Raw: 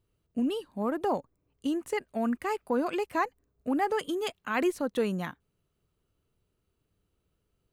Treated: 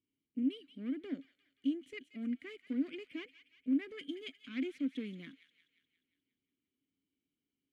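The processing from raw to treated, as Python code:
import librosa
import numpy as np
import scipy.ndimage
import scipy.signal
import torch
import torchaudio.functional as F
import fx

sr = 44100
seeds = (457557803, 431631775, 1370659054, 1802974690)

y = fx.diode_clip(x, sr, knee_db=-31.5)
y = fx.vowel_filter(y, sr, vowel='i')
y = fx.high_shelf(y, sr, hz=5100.0, db=4.0)
y = fx.echo_wet_highpass(y, sr, ms=177, feedback_pct=54, hz=2100.0, wet_db=-10.5)
y = y * librosa.db_to_amplitude(2.5)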